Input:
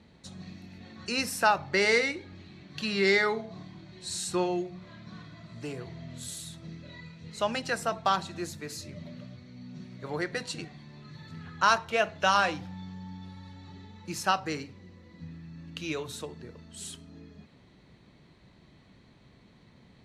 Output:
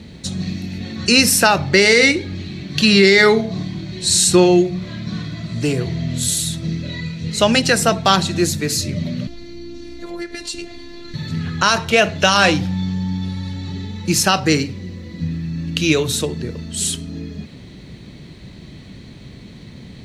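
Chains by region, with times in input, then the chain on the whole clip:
9.27–11.14 compressor 3:1, threshold -43 dBFS + robotiser 344 Hz
whole clip: bell 1000 Hz -10.5 dB 1.9 oct; maximiser +22 dB; gain -1 dB

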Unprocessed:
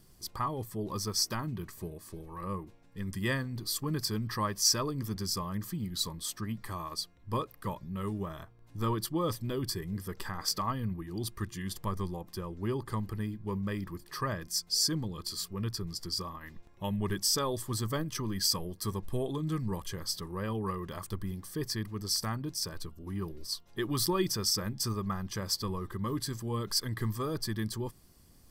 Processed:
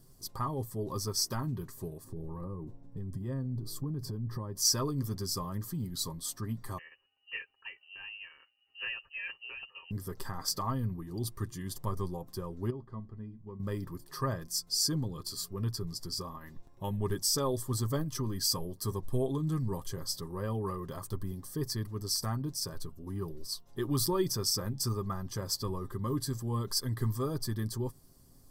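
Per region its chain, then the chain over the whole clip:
2.04–4.57 tilt shelf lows +9 dB, about 860 Hz + compressor 5:1, threshold -35 dBFS
6.78–9.91 inverted band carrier 2900 Hz + upward expander, over -49 dBFS
12.7–13.6 tape spacing loss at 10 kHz 30 dB + resonator 220 Hz, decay 0.21 s, harmonics odd, mix 70%
whole clip: bell 2400 Hz -10.5 dB 1.3 oct; comb 7.5 ms, depth 44%

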